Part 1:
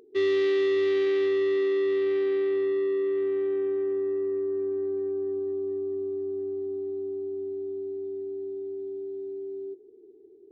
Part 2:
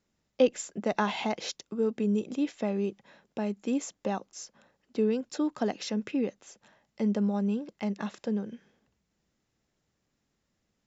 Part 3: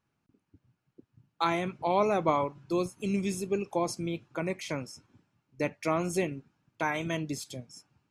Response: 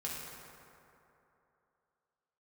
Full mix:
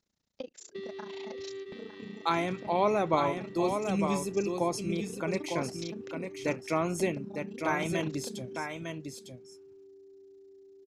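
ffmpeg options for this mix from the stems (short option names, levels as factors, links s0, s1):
-filter_complex "[0:a]adelay=600,volume=0.376,asplit=2[s0][s1];[s1]volume=0.282[s2];[1:a]equalizer=f=5900:w=2.2:g=5,tremolo=f=29:d=1,volume=0.75,asplit=3[s3][s4][s5];[s4]volume=0.0631[s6];[2:a]adelay=850,volume=0.944,asplit=2[s7][s8];[s8]volume=0.501[s9];[s5]apad=whole_len=490097[s10];[s0][s10]sidechaingate=range=0.0224:threshold=0.00178:ratio=16:detection=peak[s11];[s11][s3]amix=inputs=2:normalize=0,equalizer=f=4200:t=o:w=0.51:g=6.5,acompressor=threshold=0.0126:ratio=10,volume=1[s12];[s2][s6][s9]amix=inputs=3:normalize=0,aecho=0:1:904:1[s13];[s7][s12][s13]amix=inputs=3:normalize=0"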